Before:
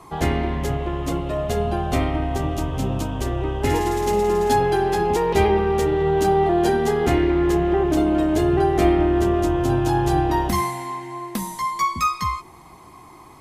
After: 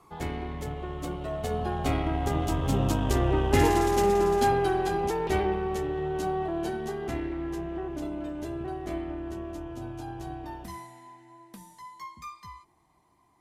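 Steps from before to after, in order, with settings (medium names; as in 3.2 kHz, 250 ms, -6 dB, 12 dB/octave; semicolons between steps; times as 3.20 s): Doppler pass-by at 3.25 s, 14 m/s, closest 11 m; Chebyshev shaper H 8 -27 dB, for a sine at -9 dBFS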